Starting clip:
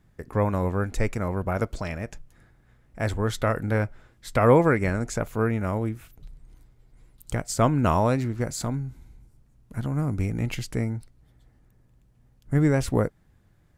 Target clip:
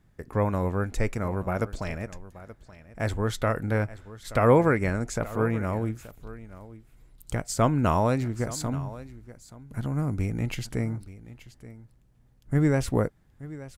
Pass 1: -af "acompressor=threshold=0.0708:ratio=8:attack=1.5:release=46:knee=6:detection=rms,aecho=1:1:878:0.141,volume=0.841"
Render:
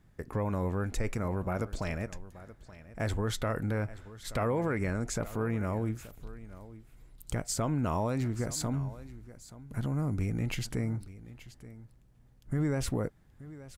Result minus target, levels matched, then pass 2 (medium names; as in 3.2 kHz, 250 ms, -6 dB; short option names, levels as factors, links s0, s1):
compression: peak gain reduction +14 dB
-af "aecho=1:1:878:0.141,volume=0.841"